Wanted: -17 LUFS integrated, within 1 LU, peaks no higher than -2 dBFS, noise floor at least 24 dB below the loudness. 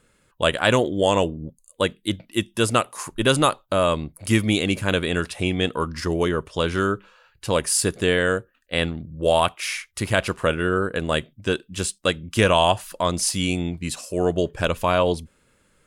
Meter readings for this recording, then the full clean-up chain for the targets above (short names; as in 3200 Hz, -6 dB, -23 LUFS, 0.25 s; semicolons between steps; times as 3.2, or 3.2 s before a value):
loudness -22.5 LUFS; peak -2.5 dBFS; loudness target -17.0 LUFS
-> gain +5.5 dB; limiter -2 dBFS